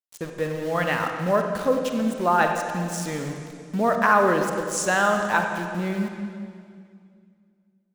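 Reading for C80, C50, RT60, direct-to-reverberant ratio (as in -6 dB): 5.5 dB, 4.5 dB, 2.2 s, 3.5 dB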